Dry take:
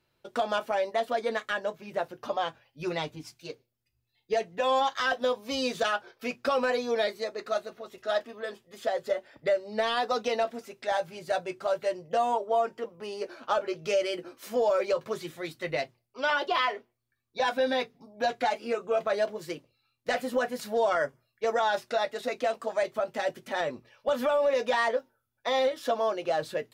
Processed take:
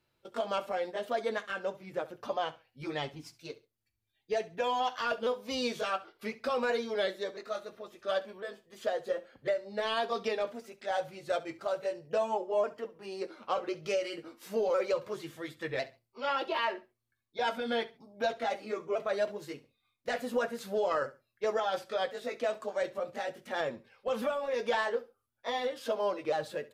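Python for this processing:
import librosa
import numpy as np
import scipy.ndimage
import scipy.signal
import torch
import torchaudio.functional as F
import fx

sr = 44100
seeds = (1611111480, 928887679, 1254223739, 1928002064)

y = fx.pitch_ramps(x, sr, semitones=-2.0, every_ms=1053)
y = fx.echo_feedback(y, sr, ms=68, feedback_pct=23, wet_db=-18)
y = y * librosa.db_to_amplitude(-3.0)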